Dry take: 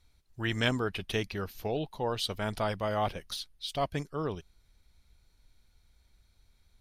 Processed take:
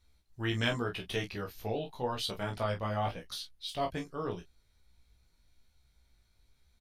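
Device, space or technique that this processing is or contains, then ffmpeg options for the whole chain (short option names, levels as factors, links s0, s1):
double-tracked vocal: -filter_complex "[0:a]asplit=2[s0][s1];[s1]adelay=29,volume=0.422[s2];[s0][s2]amix=inputs=2:normalize=0,flanger=delay=15.5:depth=2.4:speed=0.87,asettb=1/sr,asplit=3[s3][s4][s5];[s3]atrim=end=2.434[s6];[s4]atrim=start=2.43:end=3.32,asetpts=PTS-STARTPTS,afade=t=in:d=0.004:c=qsin,afade=t=out:st=0.886:d=0.004:c=qsin,highshelf=f=5200:g=-5.5[s7];[s5]atrim=start=3.316[s8];[s6][s7]acrossfade=d=0.004:c1=hsin:c2=qsin[s9];[s9][s8]acrossfade=d=0.004:c1=qsin:c2=hsin"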